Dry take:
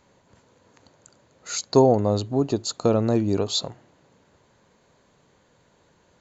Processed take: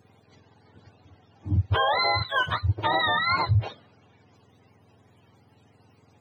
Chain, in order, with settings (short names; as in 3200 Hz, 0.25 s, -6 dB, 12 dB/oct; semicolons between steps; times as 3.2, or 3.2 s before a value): spectrum mirrored in octaves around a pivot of 650 Hz; limiter -17.5 dBFS, peak gain reduction 10 dB; gain +3 dB